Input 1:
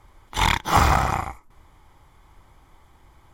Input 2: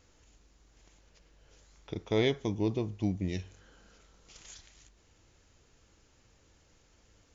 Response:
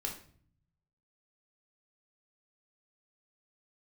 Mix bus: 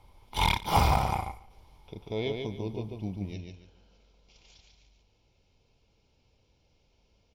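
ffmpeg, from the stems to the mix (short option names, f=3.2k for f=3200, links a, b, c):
-filter_complex "[0:a]volume=-4.5dB,asplit=2[a][b];[b]volume=-20.5dB[c];[1:a]lowpass=5.8k,volume=-4.5dB,asplit=2[d][e];[e]volume=-4.5dB[f];[c][f]amix=inputs=2:normalize=0,aecho=0:1:143|286|429|572:1|0.27|0.0729|0.0197[g];[a][d][g]amix=inputs=3:normalize=0,superequalizer=6b=0.631:10b=0.355:11b=0.251:15b=0.355"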